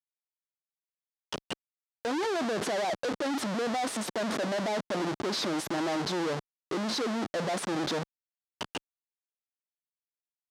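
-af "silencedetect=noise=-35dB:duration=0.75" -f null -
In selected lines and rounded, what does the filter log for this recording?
silence_start: 0.00
silence_end: 1.32 | silence_duration: 1.32
silence_start: 8.78
silence_end: 10.50 | silence_duration: 1.73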